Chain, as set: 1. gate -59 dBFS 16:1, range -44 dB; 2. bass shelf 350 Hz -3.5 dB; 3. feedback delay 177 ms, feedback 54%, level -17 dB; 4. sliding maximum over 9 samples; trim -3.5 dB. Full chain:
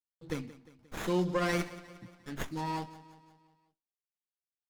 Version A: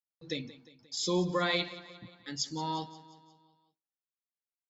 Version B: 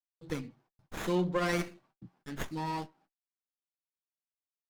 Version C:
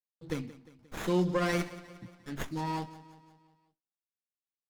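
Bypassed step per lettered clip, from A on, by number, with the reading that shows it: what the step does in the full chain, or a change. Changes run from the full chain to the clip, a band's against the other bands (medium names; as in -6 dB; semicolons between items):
4, distortion -3 dB; 3, momentary loudness spread change -1 LU; 2, 125 Hz band +2.0 dB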